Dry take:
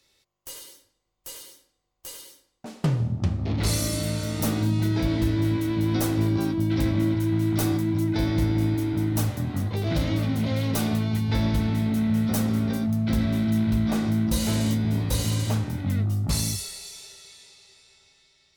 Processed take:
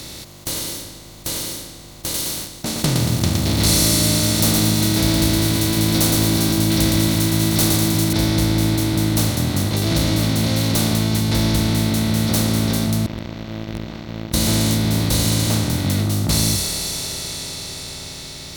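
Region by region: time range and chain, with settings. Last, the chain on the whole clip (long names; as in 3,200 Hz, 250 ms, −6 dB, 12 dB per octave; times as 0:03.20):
0:02.14–0:08.13: high-shelf EQ 3,200 Hz +9 dB + feedback echo at a low word length 115 ms, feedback 35%, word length 7 bits, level −5.5 dB
0:13.06–0:14.34: linear delta modulator 16 kbit/s, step −37.5 dBFS + noise gate −18 dBFS, range −19 dB + power curve on the samples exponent 3
whole clip: compressor on every frequency bin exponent 0.4; parametric band 3,700 Hz +4 dB 0.77 octaves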